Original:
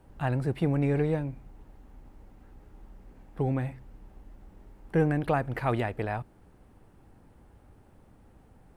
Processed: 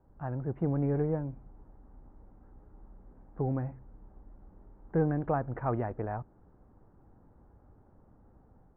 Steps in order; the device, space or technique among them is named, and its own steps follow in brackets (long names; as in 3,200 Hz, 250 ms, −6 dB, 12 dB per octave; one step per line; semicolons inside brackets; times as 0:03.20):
action camera in a waterproof case (low-pass filter 1,400 Hz 24 dB per octave; automatic gain control gain up to 5 dB; level −8 dB; AAC 48 kbit/s 44,100 Hz)